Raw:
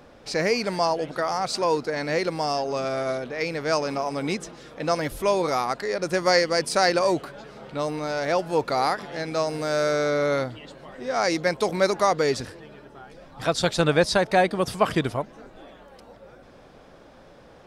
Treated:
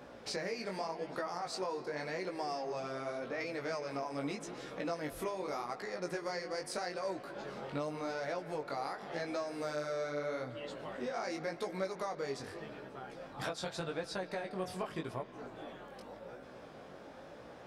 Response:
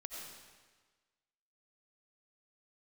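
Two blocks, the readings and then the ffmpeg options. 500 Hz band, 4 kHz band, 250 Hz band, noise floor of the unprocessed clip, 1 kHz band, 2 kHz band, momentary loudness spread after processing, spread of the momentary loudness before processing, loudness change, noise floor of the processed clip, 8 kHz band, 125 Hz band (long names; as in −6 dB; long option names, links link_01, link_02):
−14.5 dB, −16.0 dB, −13.5 dB, −50 dBFS, −15.0 dB, −14.5 dB, 10 LU, 10 LU, −15.5 dB, −52 dBFS, −15.0 dB, −15.5 dB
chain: -filter_complex "[0:a]highpass=frequency=140:poles=1,acompressor=threshold=-34dB:ratio=12,asplit=2[link_01][link_02];[1:a]atrim=start_sample=2205,asetrate=24696,aresample=44100,lowpass=3200[link_03];[link_02][link_03]afir=irnorm=-1:irlink=0,volume=-10dB[link_04];[link_01][link_04]amix=inputs=2:normalize=0,flanger=delay=15.5:depth=6.5:speed=0.85"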